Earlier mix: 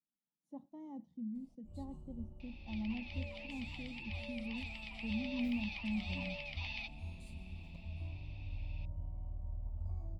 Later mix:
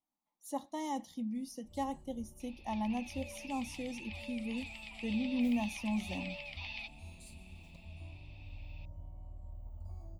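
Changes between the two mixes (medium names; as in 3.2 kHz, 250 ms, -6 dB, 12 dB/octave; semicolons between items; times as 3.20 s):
speech: remove band-pass filter 160 Hz, Q 1.8; first sound: add tone controls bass -5 dB, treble +11 dB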